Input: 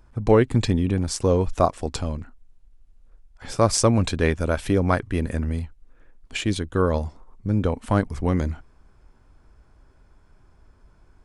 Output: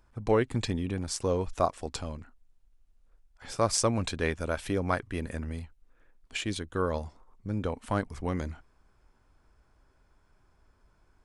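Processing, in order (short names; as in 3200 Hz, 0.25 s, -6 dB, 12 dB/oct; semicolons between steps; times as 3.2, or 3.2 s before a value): low shelf 450 Hz -6 dB; gain -5 dB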